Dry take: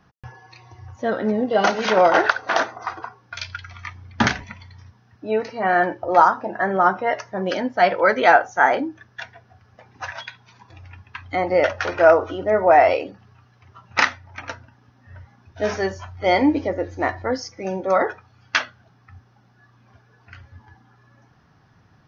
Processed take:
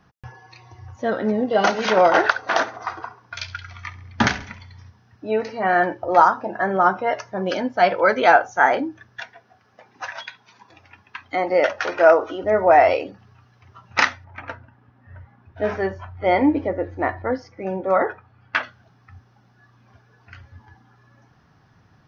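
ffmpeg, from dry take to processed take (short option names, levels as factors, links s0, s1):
-filter_complex "[0:a]asettb=1/sr,asplit=3[s0][s1][s2];[s0]atrim=end=2.604[s3];[s1]atrim=start=2.6:end=5.58,asetpts=PTS-STARTPTS,afade=t=in:d=0.004:c=qsin,afade=t=out:st=2.976:d=0.004:c=qsin,aecho=1:1:68|136|204|272:0.133|0.0693|0.0361|0.0188,atrim=end_sample=131418[s4];[s2]atrim=start=5.576[s5];[s3][s4]acrossfade=d=0.004:c1=hsin:c2=qsin[s6];[s6][s5]acrossfade=d=0.004:c1=qsin:c2=hsin,asettb=1/sr,asplit=3[s7][s8][s9];[s7]atrim=end=6.304[s10];[s8]atrim=start=6.3:end=8.59,asetpts=PTS-STARTPTS,afade=t=in:d=0.004:c=qsin,afade=t=out:st=2.286:d=0.004:c=qsin,bandreject=f=1900:w=12[s11];[s9]atrim=start=8.586[s12];[s10][s11]acrossfade=d=0.004:c1=hsin:c2=qsin[s13];[s13][s12]acrossfade=d=0.004:c1=qsin:c2=hsin,asettb=1/sr,asplit=3[s14][s15][s16];[s14]atrim=end=9.214[s17];[s15]atrim=start=9.21:end=12.44,asetpts=PTS-STARTPTS,afade=t=in:d=0.004:c=qsin,afade=t=out:st=3.226:d=0.004:c=qsin,highpass=220[s18];[s16]atrim=start=12.436[s19];[s17][s18]acrossfade=d=0.004:c1=hsin:c2=qsin[s20];[s20][s19]acrossfade=d=0.004:c1=qsin:c2=hsin,asplit=3[s21][s22][s23];[s21]afade=t=out:st=14.24:d=0.02[s24];[s22]lowpass=2300,afade=t=in:st=14.24:d=0.02,afade=t=out:st=18.62:d=0.02[s25];[s23]afade=t=in:st=18.62:d=0.02[s26];[s24][s25][s26]amix=inputs=3:normalize=0"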